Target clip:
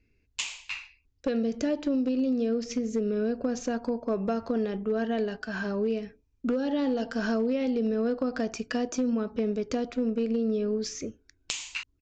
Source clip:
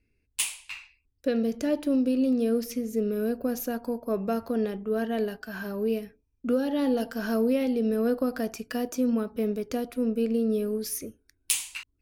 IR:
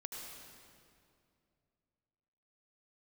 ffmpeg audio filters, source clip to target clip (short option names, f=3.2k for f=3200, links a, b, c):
-af "acompressor=threshold=-28dB:ratio=4,aresample=16000,aeval=exprs='clip(val(0),-1,0.0631)':c=same,aresample=44100,volume=3.5dB"